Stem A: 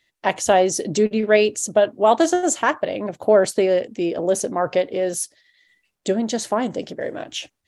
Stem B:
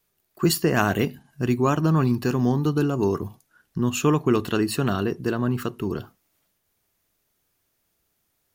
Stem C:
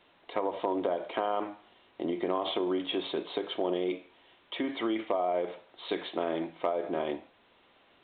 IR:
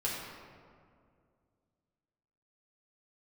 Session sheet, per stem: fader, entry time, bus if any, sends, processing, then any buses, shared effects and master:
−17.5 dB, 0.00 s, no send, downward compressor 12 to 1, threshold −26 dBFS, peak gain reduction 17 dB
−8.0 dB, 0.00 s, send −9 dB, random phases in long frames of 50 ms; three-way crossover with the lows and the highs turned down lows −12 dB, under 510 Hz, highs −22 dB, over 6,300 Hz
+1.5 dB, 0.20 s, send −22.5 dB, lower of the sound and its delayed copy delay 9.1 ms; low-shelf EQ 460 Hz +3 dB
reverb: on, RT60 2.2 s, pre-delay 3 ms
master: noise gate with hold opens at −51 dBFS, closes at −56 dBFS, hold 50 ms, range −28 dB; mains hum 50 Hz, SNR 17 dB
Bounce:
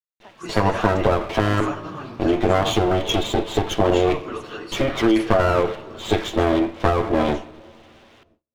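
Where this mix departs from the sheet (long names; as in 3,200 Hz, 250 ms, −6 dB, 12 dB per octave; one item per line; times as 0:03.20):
stem C +1.5 dB → +11.5 dB
master: missing mains hum 50 Hz, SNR 17 dB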